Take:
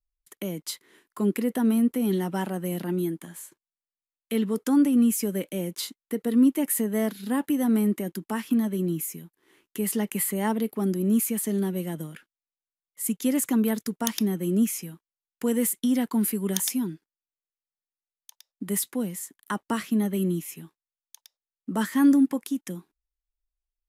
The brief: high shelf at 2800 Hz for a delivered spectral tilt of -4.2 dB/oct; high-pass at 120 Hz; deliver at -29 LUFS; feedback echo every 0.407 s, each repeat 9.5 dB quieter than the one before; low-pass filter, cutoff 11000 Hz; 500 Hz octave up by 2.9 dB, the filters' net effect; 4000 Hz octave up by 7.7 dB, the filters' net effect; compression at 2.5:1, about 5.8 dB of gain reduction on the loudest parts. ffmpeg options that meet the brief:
-af "highpass=120,lowpass=11k,equalizer=f=500:t=o:g=3.5,highshelf=f=2.8k:g=3.5,equalizer=f=4k:t=o:g=7,acompressor=threshold=-23dB:ratio=2.5,aecho=1:1:407|814|1221|1628:0.335|0.111|0.0365|0.012,volume=-1.5dB"

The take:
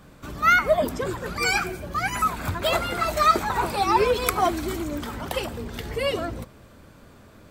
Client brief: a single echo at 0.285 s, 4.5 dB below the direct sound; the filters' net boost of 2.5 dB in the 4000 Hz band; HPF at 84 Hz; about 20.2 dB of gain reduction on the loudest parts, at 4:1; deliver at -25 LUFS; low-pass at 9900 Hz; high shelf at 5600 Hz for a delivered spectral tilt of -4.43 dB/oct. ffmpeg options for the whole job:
-af "highpass=84,lowpass=9.9k,equalizer=f=4k:t=o:g=5.5,highshelf=f=5.6k:g=-6,acompressor=threshold=-39dB:ratio=4,aecho=1:1:285:0.596,volume=13dB"

